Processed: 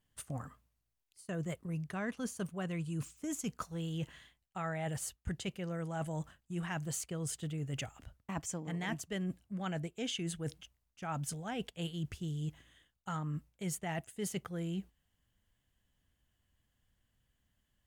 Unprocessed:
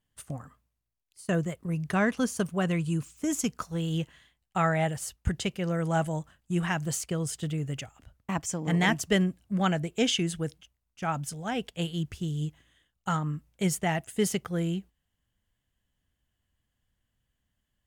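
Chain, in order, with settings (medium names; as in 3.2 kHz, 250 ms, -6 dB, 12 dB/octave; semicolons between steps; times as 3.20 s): dynamic bell 5.3 kHz, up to -4 dB, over -57 dBFS, Q 5.8; reverse; compression 6:1, threshold -37 dBFS, peak gain reduction 16.5 dB; reverse; trim +1 dB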